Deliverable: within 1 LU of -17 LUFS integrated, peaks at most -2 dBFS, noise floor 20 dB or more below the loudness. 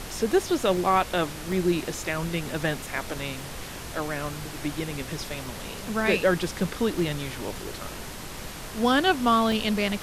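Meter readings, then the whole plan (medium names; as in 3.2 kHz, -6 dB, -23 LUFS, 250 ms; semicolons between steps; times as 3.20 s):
dropouts 7; longest dropout 1.2 ms; noise floor -38 dBFS; noise floor target -47 dBFS; loudness -27.0 LUFS; peak level -10.0 dBFS; loudness target -17.0 LUFS
-> interpolate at 0.77/1.52/3.41/4.44/5.46/6.99/9.52 s, 1.2 ms; noise print and reduce 9 dB; trim +10 dB; peak limiter -2 dBFS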